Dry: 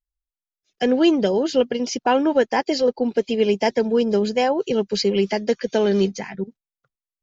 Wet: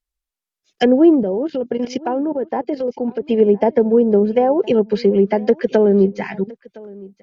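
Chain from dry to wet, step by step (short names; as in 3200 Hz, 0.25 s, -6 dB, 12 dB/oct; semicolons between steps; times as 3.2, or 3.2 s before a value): treble ducked by the level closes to 700 Hz, closed at -15.5 dBFS; low shelf 99 Hz -5.5 dB; 1.23–3.26 level quantiser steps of 13 dB; echo 1.013 s -22.5 dB; gain +6.5 dB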